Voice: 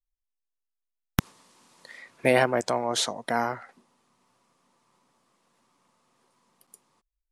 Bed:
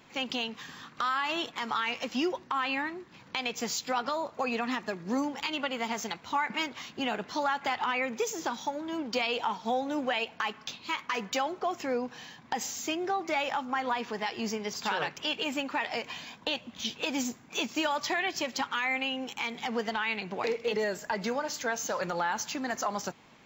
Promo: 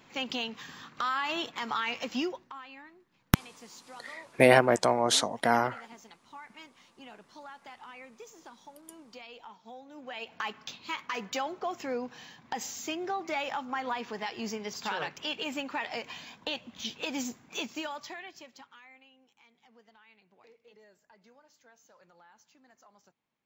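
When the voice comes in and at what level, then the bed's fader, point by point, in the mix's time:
2.15 s, +1.5 dB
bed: 2.19 s -1 dB
2.67 s -18 dB
9.92 s -18 dB
10.38 s -3 dB
17.55 s -3 dB
19.12 s -29 dB

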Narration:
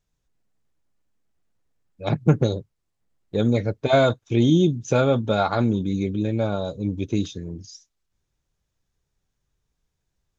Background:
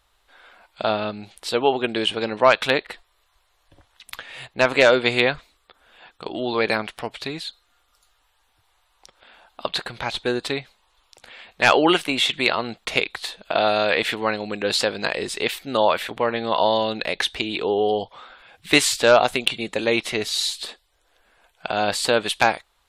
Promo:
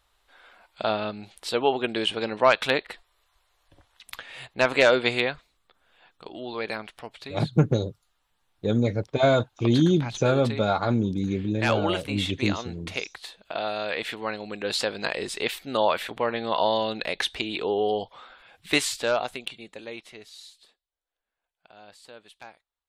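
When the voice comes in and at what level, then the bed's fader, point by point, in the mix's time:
5.30 s, -2.5 dB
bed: 5.08 s -3.5 dB
5.43 s -10 dB
13.76 s -10 dB
15.12 s -4 dB
18.51 s -4 dB
20.89 s -27.5 dB

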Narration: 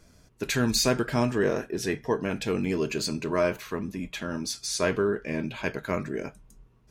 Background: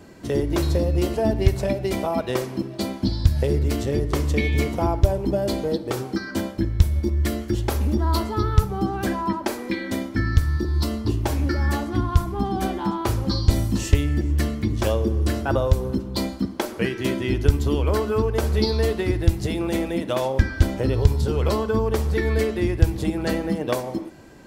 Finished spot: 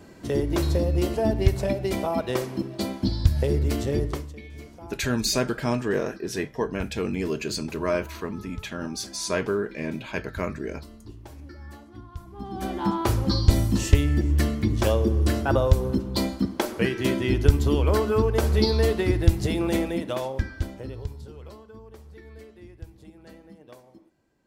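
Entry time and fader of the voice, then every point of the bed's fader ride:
4.50 s, -0.5 dB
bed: 4.06 s -2 dB
4.35 s -20.5 dB
12.16 s -20.5 dB
12.85 s 0 dB
19.75 s 0 dB
21.65 s -24 dB

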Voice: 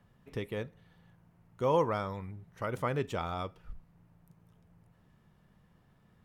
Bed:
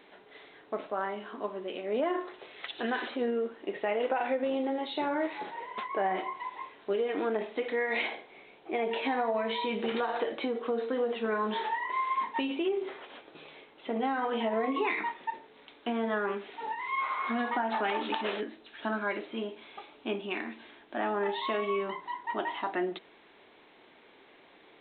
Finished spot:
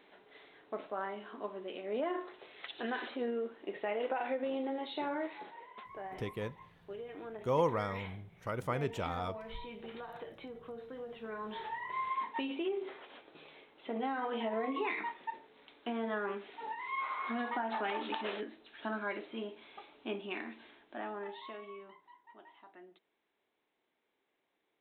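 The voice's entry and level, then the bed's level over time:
5.85 s, -2.5 dB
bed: 5.10 s -5.5 dB
5.96 s -15 dB
11.04 s -15 dB
12.04 s -5.5 dB
20.66 s -5.5 dB
22.33 s -24.5 dB

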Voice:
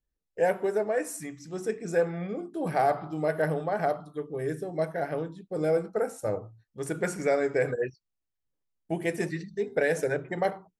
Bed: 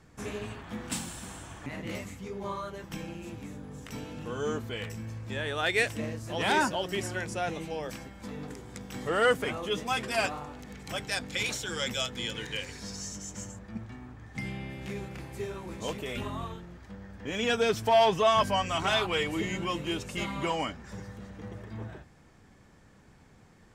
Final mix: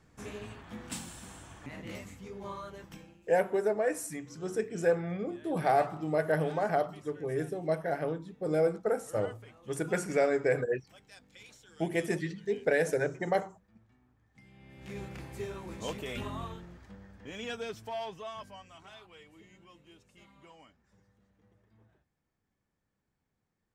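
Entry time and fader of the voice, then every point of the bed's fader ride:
2.90 s, -1.5 dB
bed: 2.83 s -5.5 dB
3.28 s -22.5 dB
14.47 s -22.5 dB
15.00 s -2.5 dB
16.64 s -2.5 dB
18.96 s -25.5 dB

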